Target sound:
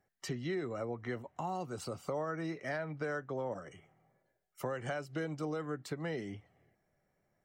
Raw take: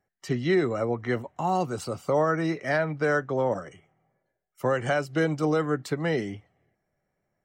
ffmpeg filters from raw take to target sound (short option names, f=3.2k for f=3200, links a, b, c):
-af "acompressor=threshold=-41dB:ratio=2.5"